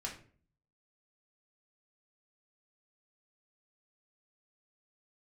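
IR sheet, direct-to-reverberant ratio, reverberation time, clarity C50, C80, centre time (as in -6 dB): -2.5 dB, 0.45 s, 8.5 dB, 13.5 dB, 22 ms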